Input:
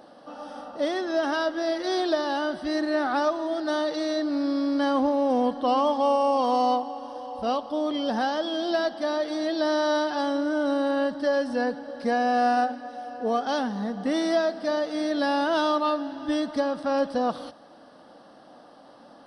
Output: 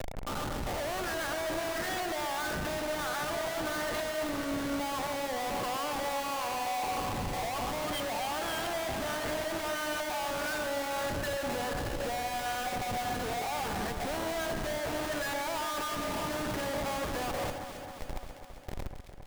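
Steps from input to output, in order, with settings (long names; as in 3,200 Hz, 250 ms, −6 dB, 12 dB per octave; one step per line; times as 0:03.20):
low-shelf EQ 110 Hz −10 dB
in parallel at −4.5 dB: soft clipping −30.5 dBFS, distortion −7 dB
on the sum: auto-filter band-pass saw up 1.5 Hz 620–2,400 Hz
comparator with hysteresis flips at −44 dBFS
delay that swaps between a low-pass and a high-pass 135 ms, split 1,900 Hz, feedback 81%, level −6.5 dB
level −2.5 dB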